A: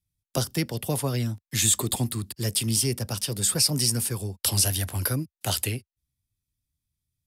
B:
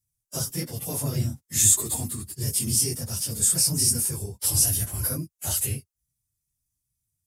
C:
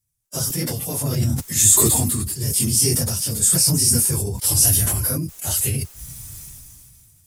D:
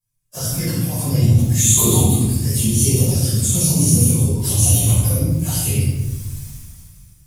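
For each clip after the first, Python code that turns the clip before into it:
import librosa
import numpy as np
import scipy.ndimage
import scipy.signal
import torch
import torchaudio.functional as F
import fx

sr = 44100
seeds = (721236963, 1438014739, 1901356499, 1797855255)

y1 = fx.phase_scramble(x, sr, seeds[0], window_ms=50)
y1 = fx.hpss(y1, sr, part='percussive', gain_db=-9)
y1 = fx.high_shelf_res(y1, sr, hz=5100.0, db=8.5, q=1.5)
y2 = fx.sustainer(y1, sr, db_per_s=23.0)
y2 = y2 * 10.0 ** (4.0 / 20.0)
y3 = fx.env_flanger(y2, sr, rest_ms=6.8, full_db=-17.5)
y3 = fx.room_shoebox(y3, sr, seeds[1], volume_m3=500.0, walls='mixed', distance_m=5.5)
y3 = y3 * 10.0 ** (-7.0 / 20.0)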